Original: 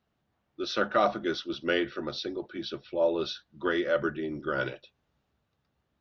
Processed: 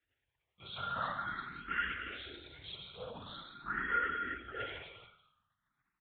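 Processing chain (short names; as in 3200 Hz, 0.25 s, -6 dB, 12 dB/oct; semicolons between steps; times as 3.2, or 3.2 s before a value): frequency shift -89 Hz; bell 500 Hz -10 dB 2 oct; resonator 470 Hz, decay 0.17 s, harmonics all, mix 90%; non-linear reverb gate 0.46 s falling, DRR -2 dB; soft clip -35.5 dBFS, distortion -17 dB; doubler 40 ms -4.5 dB; LPC vocoder at 8 kHz whisper; HPF 52 Hz; bell 1600 Hz +12 dB 2 oct; frequency-shifting echo 0.122 s, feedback 47%, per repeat -45 Hz, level -19.5 dB; endless phaser +0.45 Hz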